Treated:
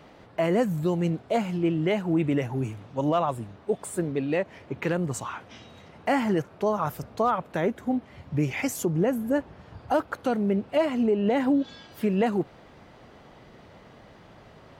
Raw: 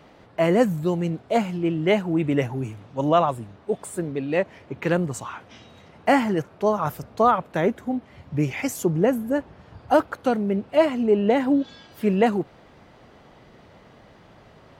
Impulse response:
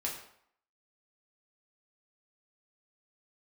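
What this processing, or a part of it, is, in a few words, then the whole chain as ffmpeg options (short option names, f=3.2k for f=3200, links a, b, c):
clipper into limiter: -af "asoftclip=type=hard:threshold=-8.5dB,alimiter=limit=-15dB:level=0:latency=1:release=169"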